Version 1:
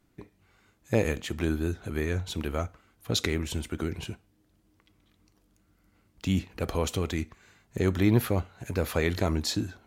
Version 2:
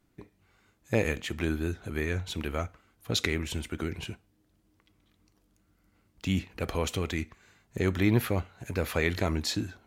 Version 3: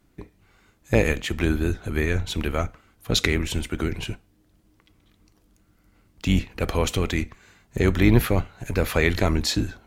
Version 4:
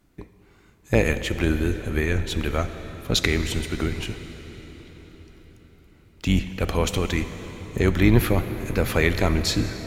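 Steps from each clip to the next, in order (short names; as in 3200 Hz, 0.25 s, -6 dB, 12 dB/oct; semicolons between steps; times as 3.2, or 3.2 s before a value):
dynamic EQ 2200 Hz, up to +5 dB, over -49 dBFS, Q 1.2; gain -2 dB
octaver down 2 oct, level -4 dB; gain +6.5 dB
reverb RT60 5.4 s, pre-delay 54 ms, DRR 10 dB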